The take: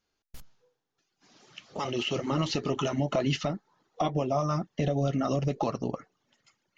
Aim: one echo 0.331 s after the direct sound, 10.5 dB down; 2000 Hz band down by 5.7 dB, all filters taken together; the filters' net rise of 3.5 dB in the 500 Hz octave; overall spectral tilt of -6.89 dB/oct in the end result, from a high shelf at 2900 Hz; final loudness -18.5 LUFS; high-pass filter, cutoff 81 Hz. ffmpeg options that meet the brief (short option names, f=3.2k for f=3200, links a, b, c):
-af "highpass=81,equalizer=f=500:t=o:g=5,equalizer=f=2k:t=o:g=-5,highshelf=f=2.9k:g=-6,aecho=1:1:331:0.299,volume=10dB"